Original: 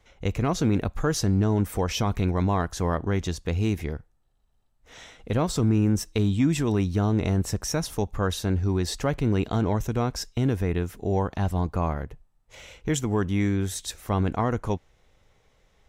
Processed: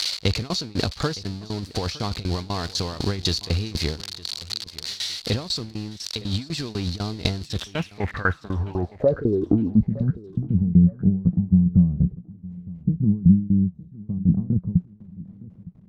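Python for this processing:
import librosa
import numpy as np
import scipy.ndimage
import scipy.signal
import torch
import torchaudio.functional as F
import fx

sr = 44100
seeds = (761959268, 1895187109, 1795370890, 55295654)

p1 = x + 0.5 * 10.0 ** (-21.5 / 20.0) * np.diff(np.sign(x), prepend=np.sign(x[:1]))
p2 = scipy.signal.sosfilt(scipy.signal.butter(4, 50.0, 'highpass', fs=sr, output='sos'), p1)
p3 = fx.high_shelf(p2, sr, hz=9600.0, db=10.0)
p4 = fx.transient(p3, sr, attack_db=-8, sustain_db=-1)
p5 = fx.over_compress(p4, sr, threshold_db=-27.0, ratio=-0.5)
p6 = fx.leveller(p5, sr, passes=2)
p7 = fx.tremolo_shape(p6, sr, shape='saw_down', hz=4.0, depth_pct=95)
p8 = fx.filter_sweep_lowpass(p7, sr, from_hz=4400.0, to_hz=180.0, start_s=7.45, end_s=9.94, q=7.0)
y = p8 + fx.echo_feedback(p8, sr, ms=913, feedback_pct=35, wet_db=-20.0, dry=0)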